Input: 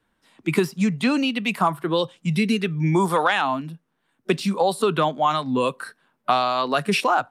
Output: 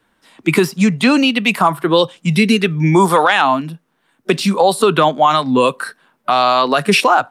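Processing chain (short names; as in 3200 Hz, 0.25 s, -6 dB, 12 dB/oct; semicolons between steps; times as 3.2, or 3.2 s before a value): low shelf 150 Hz -7 dB; maximiser +11 dB; gain -1 dB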